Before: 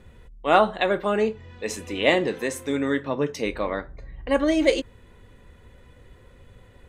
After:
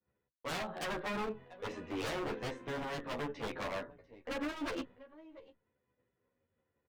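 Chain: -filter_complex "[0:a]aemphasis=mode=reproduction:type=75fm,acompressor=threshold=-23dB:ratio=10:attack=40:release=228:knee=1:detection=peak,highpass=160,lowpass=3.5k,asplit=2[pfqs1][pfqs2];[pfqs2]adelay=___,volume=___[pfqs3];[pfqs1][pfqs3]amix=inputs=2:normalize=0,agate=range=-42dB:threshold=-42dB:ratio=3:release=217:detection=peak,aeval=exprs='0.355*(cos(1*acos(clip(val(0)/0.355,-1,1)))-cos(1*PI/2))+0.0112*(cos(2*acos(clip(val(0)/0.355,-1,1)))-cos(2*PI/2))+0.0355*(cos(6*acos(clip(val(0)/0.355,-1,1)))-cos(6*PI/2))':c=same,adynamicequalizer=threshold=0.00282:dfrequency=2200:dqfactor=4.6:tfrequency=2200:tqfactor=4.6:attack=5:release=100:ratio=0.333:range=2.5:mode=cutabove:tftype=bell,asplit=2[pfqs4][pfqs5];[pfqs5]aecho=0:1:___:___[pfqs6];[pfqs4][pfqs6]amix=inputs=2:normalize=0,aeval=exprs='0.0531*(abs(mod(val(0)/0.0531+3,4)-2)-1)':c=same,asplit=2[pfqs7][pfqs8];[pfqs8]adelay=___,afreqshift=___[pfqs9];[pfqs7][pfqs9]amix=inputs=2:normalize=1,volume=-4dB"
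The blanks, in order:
24, -12dB, 693, 0.0668, 11.4, -0.87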